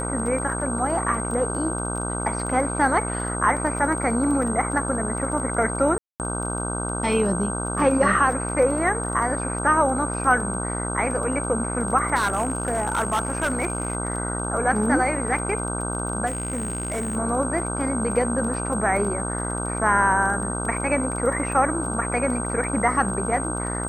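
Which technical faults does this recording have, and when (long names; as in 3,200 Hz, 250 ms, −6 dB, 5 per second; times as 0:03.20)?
mains buzz 60 Hz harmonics 26 −29 dBFS
surface crackle 15 per second −30 dBFS
whistle 8,400 Hz −30 dBFS
0:05.98–0:06.20: drop-out 218 ms
0:12.15–0:13.95: clipping −18 dBFS
0:16.26–0:17.17: clipping −23 dBFS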